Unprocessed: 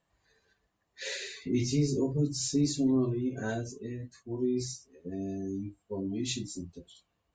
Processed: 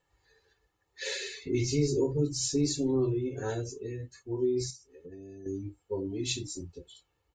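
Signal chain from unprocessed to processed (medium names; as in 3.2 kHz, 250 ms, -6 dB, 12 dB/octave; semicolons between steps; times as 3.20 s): comb 2.3 ms, depth 74%; 4.70–5.46 s: compression 3:1, threshold -47 dBFS, peak gain reduction 11 dB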